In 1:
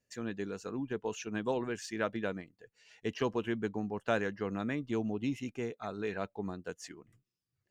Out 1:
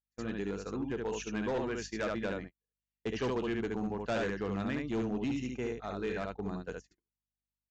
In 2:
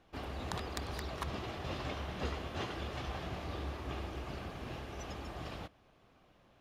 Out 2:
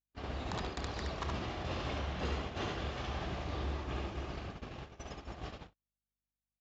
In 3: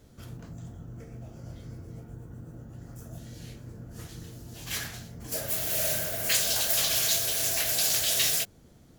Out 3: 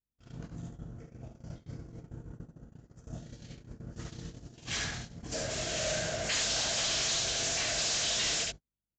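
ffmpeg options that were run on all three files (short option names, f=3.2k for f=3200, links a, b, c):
-af "aecho=1:1:32|71:0.158|0.668,aeval=exprs='val(0)+0.00316*(sin(2*PI*50*n/s)+sin(2*PI*2*50*n/s)/2+sin(2*PI*3*50*n/s)/3+sin(2*PI*4*50*n/s)/4+sin(2*PI*5*50*n/s)/5)':c=same,aresample=16000,volume=28.5dB,asoftclip=hard,volume=-28.5dB,aresample=44100,agate=range=-46dB:threshold=-40dB:ratio=16:detection=peak"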